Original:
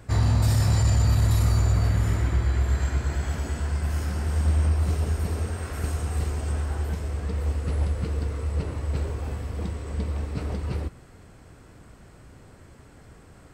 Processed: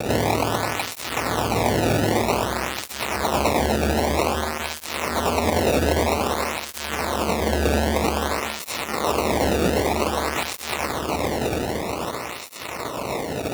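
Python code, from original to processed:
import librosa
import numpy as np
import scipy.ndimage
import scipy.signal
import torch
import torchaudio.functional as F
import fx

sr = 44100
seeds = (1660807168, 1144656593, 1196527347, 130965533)

p1 = scipy.signal.sosfilt(scipy.signal.butter(2, 8200.0, 'lowpass', fs=sr, output='sos'), x)
p2 = fx.low_shelf(p1, sr, hz=260.0, db=-4.5)
p3 = fx.hum_notches(p2, sr, base_hz=50, count=9)
p4 = fx.sample_hold(p3, sr, seeds[0], rate_hz=1600.0, jitter_pct=0)
p5 = fx.fuzz(p4, sr, gain_db=47.0, gate_db=-56.0)
p6 = p5 + fx.echo_feedback(p5, sr, ms=725, feedback_pct=47, wet_db=-6.5, dry=0)
y = fx.flanger_cancel(p6, sr, hz=0.52, depth_ms=1.0)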